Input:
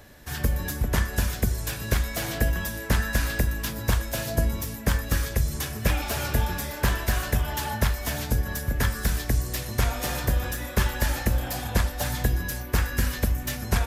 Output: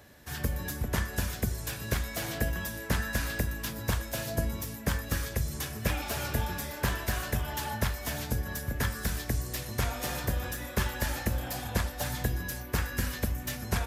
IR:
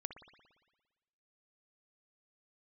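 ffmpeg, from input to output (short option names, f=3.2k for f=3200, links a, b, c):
-af "highpass=61,volume=-4.5dB"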